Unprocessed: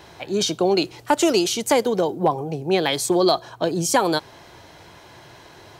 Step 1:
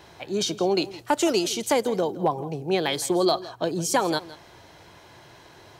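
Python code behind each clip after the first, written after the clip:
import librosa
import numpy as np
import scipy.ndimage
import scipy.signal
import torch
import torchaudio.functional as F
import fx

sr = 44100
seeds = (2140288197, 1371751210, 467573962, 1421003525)

y = x + 10.0 ** (-17.5 / 20.0) * np.pad(x, (int(164 * sr / 1000.0), 0))[:len(x)]
y = F.gain(torch.from_numpy(y), -4.0).numpy()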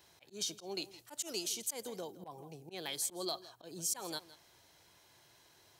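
y = fx.auto_swell(x, sr, attack_ms=102.0)
y = scipy.signal.lfilter([1.0, -0.8], [1.0], y)
y = F.gain(torch.from_numpy(y), -5.5).numpy()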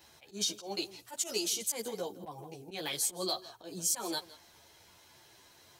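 y = fx.ensemble(x, sr)
y = F.gain(torch.from_numpy(y), 8.0).numpy()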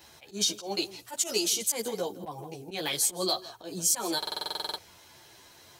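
y = fx.buffer_glitch(x, sr, at_s=(4.18,), block=2048, repeats=12)
y = F.gain(torch.from_numpy(y), 5.5).numpy()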